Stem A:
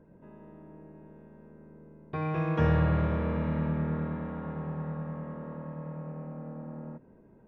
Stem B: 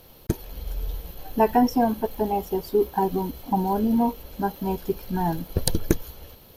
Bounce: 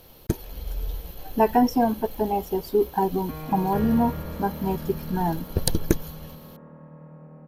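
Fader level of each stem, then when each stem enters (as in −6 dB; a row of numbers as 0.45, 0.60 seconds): −6.0, 0.0 decibels; 1.15, 0.00 seconds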